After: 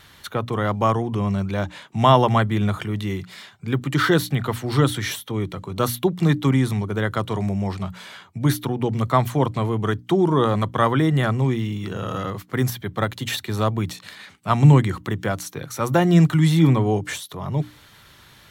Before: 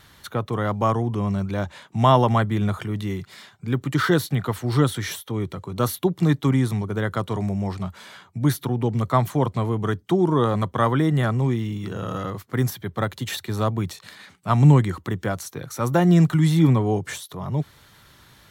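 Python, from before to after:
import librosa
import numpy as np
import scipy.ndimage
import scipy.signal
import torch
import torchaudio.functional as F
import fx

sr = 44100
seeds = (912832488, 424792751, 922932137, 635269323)

y = fx.peak_eq(x, sr, hz=2700.0, db=3.5, octaves=1.1)
y = fx.hum_notches(y, sr, base_hz=60, count=5)
y = y * 10.0 ** (1.5 / 20.0)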